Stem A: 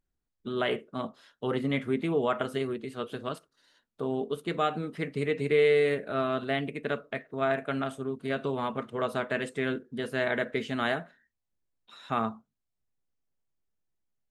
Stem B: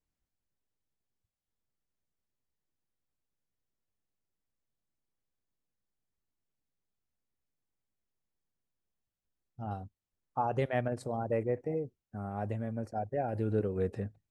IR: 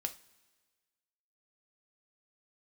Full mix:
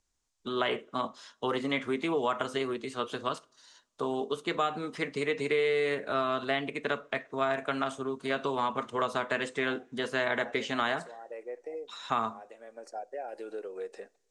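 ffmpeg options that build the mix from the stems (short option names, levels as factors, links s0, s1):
-filter_complex "[0:a]equalizer=f=160:t=o:w=0.67:g=-5,equalizer=f=1000:t=o:w=0.67:g=8,equalizer=f=6300:t=o:w=0.67:g=6,acrossover=split=240|4000[s0][s1][s2];[s0]acompressor=threshold=0.00631:ratio=4[s3];[s1]acompressor=threshold=0.0447:ratio=4[s4];[s2]acompressor=threshold=0.00112:ratio=4[s5];[s3][s4][s5]amix=inputs=3:normalize=0,volume=0.944,asplit=3[s6][s7][s8];[s7]volume=0.237[s9];[1:a]highpass=f=400:w=0.5412,highpass=f=400:w=1.3066,acompressor=threshold=0.01:ratio=2,volume=0.944,asplit=2[s10][s11];[s11]volume=0.316[s12];[s8]apad=whole_len=630943[s13];[s10][s13]sidechaincompress=threshold=0.00631:ratio=8:attack=9.4:release=502[s14];[2:a]atrim=start_sample=2205[s15];[s9][s12]amix=inputs=2:normalize=0[s16];[s16][s15]afir=irnorm=-1:irlink=0[s17];[s6][s14][s17]amix=inputs=3:normalize=0,lowpass=f=7700:w=0.5412,lowpass=f=7700:w=1.3066,aemphasis=mode=production:type=75fm"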